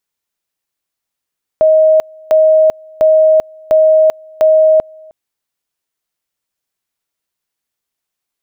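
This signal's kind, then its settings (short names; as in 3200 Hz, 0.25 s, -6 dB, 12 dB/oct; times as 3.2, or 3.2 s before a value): two-level tone 629 Hz -5 dBFS, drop 28.5 dB, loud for 0.39 s, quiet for 0.31 s, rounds 5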